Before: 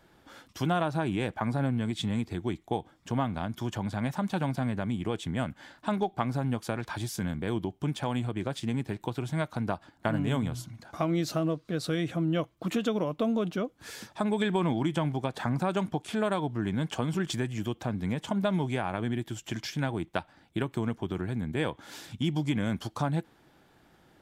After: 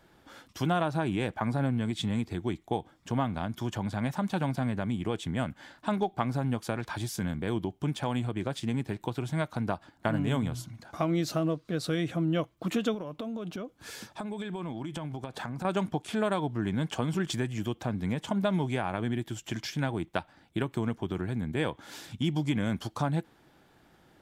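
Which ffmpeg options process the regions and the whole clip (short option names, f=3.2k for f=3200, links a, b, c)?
-filter_complex "[0:a]asettb=1/sr,asplit=3[a][b][c];[a]atrim=end=12.944[d];[b]atrim=start=12.94:end=15.65,asetpts=PTS-STARTPTS,afade=t=in:d=0.004:c=qsin,afade=t=out:st=2.706:d=0.004:c=qsin,bandreject=f=1.9k:w=19,acompressor=threshold=-32dB:ratio=12:attack=3.2:release=140:knee=1:detection=peak[e];[c]atrim=start=15.646[f];[d][e]acrossfade=d=0.004:c1=hsin:c2=qsin[g];[g][f]acrossfade=d=0.004:c1=qsin:c2=hsin"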